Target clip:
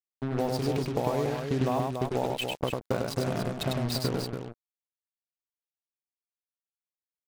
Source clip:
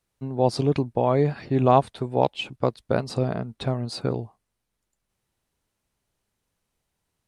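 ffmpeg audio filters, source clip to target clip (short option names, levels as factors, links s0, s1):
-filter_complex "[0:a]highshelf=f=3800:g=2.5,bandreject=f=50:t=h:w=6,bandreject=f=100:t=h:w=6,bandreject=f=150:t=h:w=6,acrusher=bits=4:mix=0:aa=0.5,acompressor=threshold=0.0501:ratio=6,asplit=2[s0][s1];[s1]aecho=0:1:99.13|285.7:0.708|0.501[s2];[s0][s2]amix=inputs=2:normalize=0"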